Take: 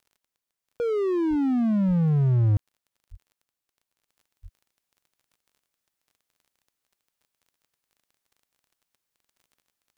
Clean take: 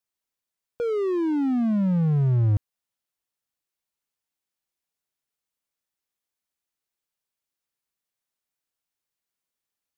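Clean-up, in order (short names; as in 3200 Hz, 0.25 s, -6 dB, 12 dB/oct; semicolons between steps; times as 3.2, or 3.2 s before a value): de-click; de-plosive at 1.29/1.87/3.1/4.42; gain 0 dB, from 4.08 s -4.5 dB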